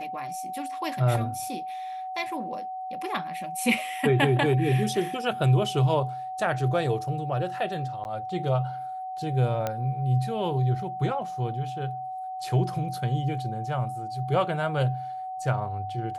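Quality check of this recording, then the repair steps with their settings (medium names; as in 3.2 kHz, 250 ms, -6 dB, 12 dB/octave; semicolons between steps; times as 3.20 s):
whine 750 Hz -32 dBFS
8.04–8.05 s: dropout 9.9 ms
9.67 s: pop -14 dBFS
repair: de-click; band-stop 750 Hz, Q 30; interpolate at 8.04 s, 9.9 ms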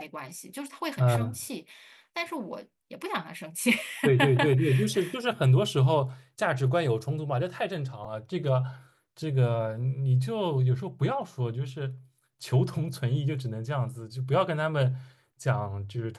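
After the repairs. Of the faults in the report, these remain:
nothing left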